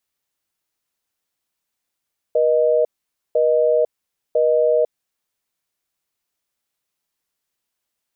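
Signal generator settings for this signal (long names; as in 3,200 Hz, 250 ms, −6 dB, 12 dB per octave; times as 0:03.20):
call progress tone busy tone, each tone −16 dBFS 2.71 s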